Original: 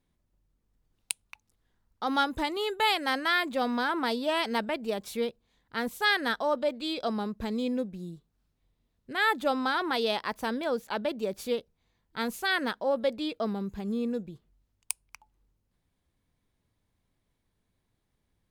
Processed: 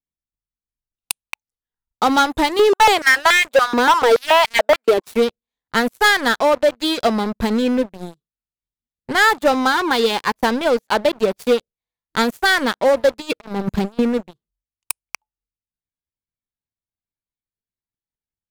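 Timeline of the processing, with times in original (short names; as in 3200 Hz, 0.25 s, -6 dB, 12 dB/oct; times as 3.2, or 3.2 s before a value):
2.59–5.06 stepped high-pass 7 Hz 340–2300 Hz
9.72–10.33 notch comb 660 Hz
13.2–13.99 negative-ratio compressor -35 dBFS, ratio -0.5
whole clip: spectral noise reduction 8 dB; transient shaper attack +7 dB, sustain -1 dB; sample leveller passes 5; gain -6.5 dB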